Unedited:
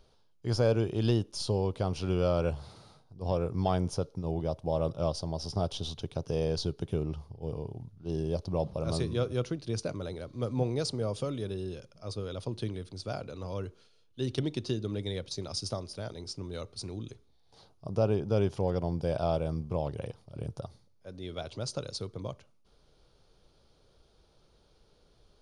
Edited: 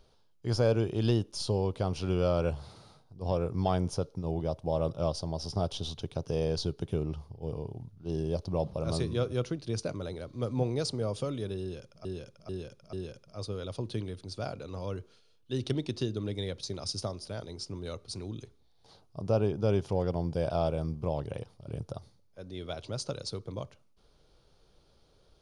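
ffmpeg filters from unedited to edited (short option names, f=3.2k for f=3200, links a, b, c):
-filter_complex "[0:a]asplit=4[a][b][c][d];[a]atrim=end=12.052[e];[b]atrim=start=11.608:end=12.052[f];[c]atrim=start=11.608:end=12.052[g];[d]atrim=start=11.608[h];[e][f]acrossfade=d=0.004:c1=hsin:c2=hsin[i];[i][g]acrossfade=d=0.004:c1=hsin:c2=hsin[j];[j][h]acrossfade=d=0.004:c1=hsin:c2=hsin"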